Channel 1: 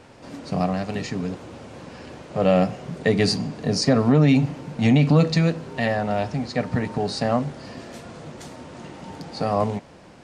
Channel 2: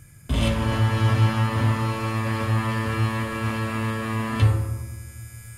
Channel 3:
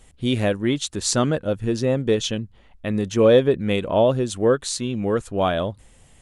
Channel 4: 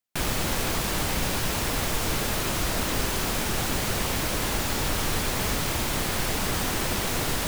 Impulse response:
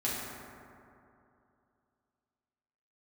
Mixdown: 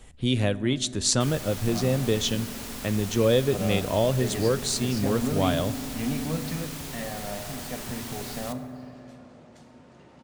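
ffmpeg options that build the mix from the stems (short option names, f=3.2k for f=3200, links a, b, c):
-filter_complex "[0:a]adelay=1150,volume=-15.5dB,asplit=2[a][b];[b]volume=-11.5dB[c];[2:a]acrossover=split=120|3000[d][e][f];[e]acompressor=threshold=-40dB:ratio=1.5[g];[d][g][f]amix=inputs=3:normalize=0,volume=2dB,asplit=2[h][i];[i]volume=-23dB[j];[3:a]highshelf=f=3.9k:g=11,adelay=1050,volume=-16dB,asplit=2[k][l];[l]volume=-13.5dB[m];[4:a]atrim=start_sample=2205[n];[c][j][m]amix=inputs=3:normalize=0[o];[o][n]afir=irnorm=-1:irlink=0[p];[a][h][k][p]amix=inputs=4:normalize=0,highshelf=f=6k:g=-5"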